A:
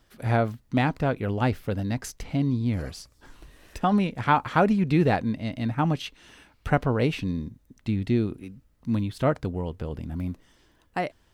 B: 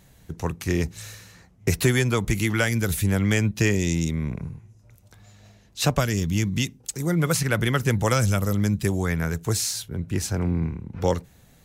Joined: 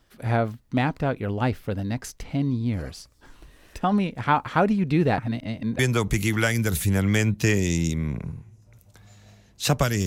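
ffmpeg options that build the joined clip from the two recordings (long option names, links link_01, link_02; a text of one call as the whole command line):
ffmpeg -i cue0.wav -i cue1.wav -filter_complex "[0:a]apad=whole_dur=10.06,atrim=end=10.06,asplit=2[link_01][link_02];[link_01]atrim=end=5.182[link_03];[link_02]atrim=start=5.178:end=5.792,asetpts=PTS-STARTPTS,areverse[link_04];[1:a]atrim=start=1.958:end=6.23[link_05];[link_03][link_04]acrossfade=duration=0.004:curve1=hsin:curve2=hsin[link_06];[link_06][link_05]acrossfade=duration=0.004:curve1=hsin:curve2=hsin" out.wav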